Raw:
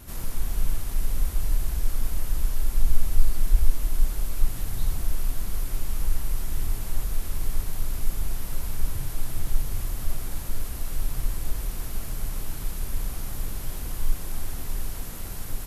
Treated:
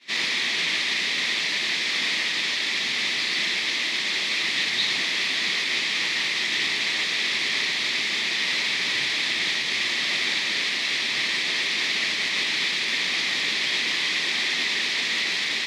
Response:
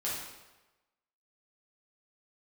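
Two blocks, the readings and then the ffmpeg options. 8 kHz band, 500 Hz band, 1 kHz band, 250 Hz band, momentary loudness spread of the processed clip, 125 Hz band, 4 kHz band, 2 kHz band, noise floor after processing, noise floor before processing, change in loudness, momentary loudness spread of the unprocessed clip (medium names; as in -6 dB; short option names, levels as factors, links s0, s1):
+5.5 dB, +6.0 dB, +8.5 dB, +3.0 dB, 1 LU, -17.5 dB, +25.0 dB, +25.0 dB, -27 dBFS, -34 dBFS, +10.0 dB, 6 LU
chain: -filter_complex "[0:a]highpass=f=240:w=0.5412,highpass=f=240:w=1.3066,equalizer=f=280:t=q:w=4:g=-4,equalizer=f=510:t=q:w=4:g=-4,equalizer=f=730:t=q:w=4:g=-4,equalizer=f=1200:t=q:w=4:g=4,equalizer=f=1900:t=q:w=4:g=7,equalizer=f=2900:t=q:w=4:g=-9,lowpass=f=3200:w=0.5412,lowpass=f=3200:w=1.3066,asplit=2[s0][s1];[s1]alimiter=level_in=7.08:limit=0.0631:level=0:latency=1:release=21,volume=0.141,volume=0.794[s2];[s0][s2]amix=inputs=2:normalize=0,agate=range=0.0224:threshold=0.0126:ratio=3:detection=peak,aexciter=amount=9.4:drive=9.4:freq=2200,volume=2.66"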